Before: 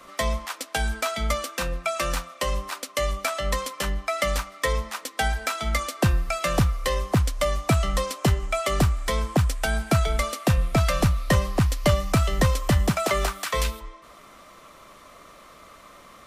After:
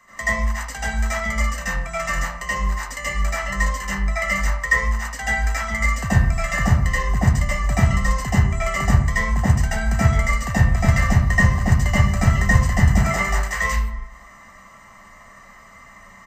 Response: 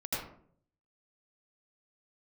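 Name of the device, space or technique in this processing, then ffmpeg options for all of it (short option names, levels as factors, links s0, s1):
microphone above a desk: -filter_complex "[0:a]aecho=1:1:1:0.6[s0];[1:a]atrim=start_sample=2205[s1];[s0][s1]afir=irnorm=-1:irlink=0,superequalizer=6b=0.355:11b=2.82:13b=0.501:15b=2:16b=0.251,volume=0.562"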